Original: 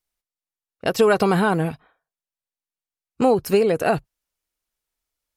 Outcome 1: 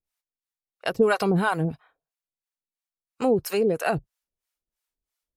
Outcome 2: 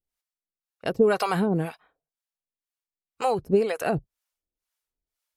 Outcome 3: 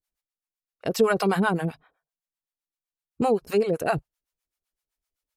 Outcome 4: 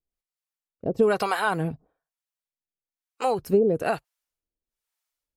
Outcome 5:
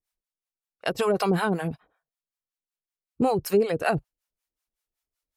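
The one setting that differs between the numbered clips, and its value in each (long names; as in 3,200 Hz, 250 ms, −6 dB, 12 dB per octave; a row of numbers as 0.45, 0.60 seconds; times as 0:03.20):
two-band tremolo in antiphase, speed: 3, 2, 7.8, 1.1, 5.3 Hertz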